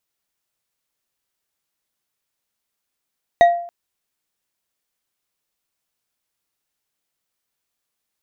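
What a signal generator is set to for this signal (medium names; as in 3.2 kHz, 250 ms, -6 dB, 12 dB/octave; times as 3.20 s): glass hit bar, length 0.28 s, lowest mode 692 Hz, decay 0.56 s, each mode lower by 10.5 dB, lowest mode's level -5 dB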